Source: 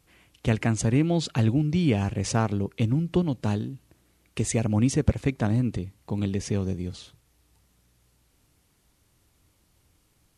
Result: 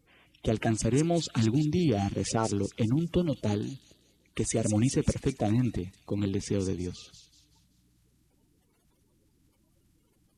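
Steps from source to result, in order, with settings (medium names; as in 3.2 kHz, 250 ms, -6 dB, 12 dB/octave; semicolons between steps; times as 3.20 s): coarse spectral quantiser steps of 30 dB; in parallel at +1.5 dB: peak limiter -16 dBFS, peak gain reduction 8.5 dB; on the sum: feedback echo behind a high-pass 192 ms, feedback 41%, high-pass 4.2 kHz, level -4 dB; trim -8.5 dB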